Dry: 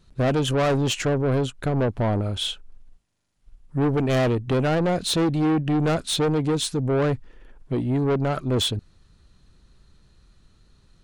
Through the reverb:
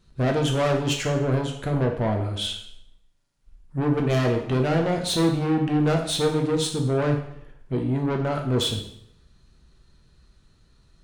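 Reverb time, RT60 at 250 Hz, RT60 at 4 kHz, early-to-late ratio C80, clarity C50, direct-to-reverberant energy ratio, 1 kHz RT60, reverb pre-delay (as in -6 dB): 0.70 s, 0.75 s, 0.65 s, 10.0 dB, 7.0 dB, 1.5 dB, 0.70 s, 4 ms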